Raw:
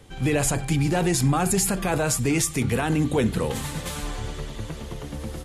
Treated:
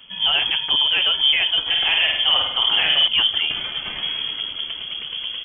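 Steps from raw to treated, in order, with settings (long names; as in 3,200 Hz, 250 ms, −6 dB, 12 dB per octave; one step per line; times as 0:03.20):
voice inversion scrambler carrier 3,300 Hz
0:01.61–0:03.08: flutter between parallel walls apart 8.6 metres, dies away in 0.76 s
level +3 dB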